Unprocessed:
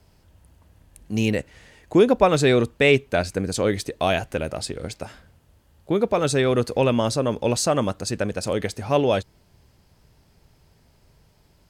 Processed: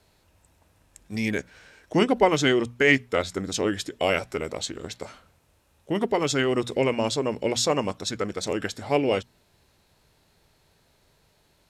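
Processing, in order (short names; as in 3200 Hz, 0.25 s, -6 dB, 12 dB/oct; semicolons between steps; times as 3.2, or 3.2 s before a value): notches 60/120/180/240 Hz; formant shift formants -3 st; low shelf 240 Hz -10 dB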